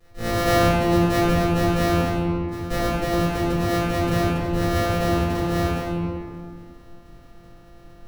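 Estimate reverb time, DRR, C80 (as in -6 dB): 2.3 s, -13.5 dB, -0.5 dB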